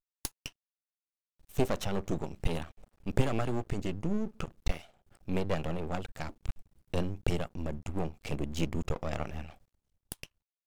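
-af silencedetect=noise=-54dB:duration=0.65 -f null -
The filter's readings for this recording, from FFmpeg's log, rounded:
silence_start: 0.51
silence_end: 1.41 | silence_duration: 0.90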